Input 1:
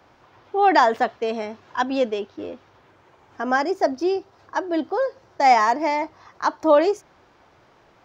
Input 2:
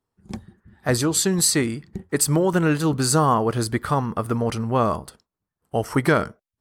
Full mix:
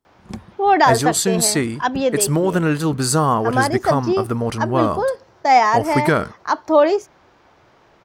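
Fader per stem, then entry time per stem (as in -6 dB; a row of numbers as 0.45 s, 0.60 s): +2.5 dB, +1.5 dB; 0.05 s, 0.00 s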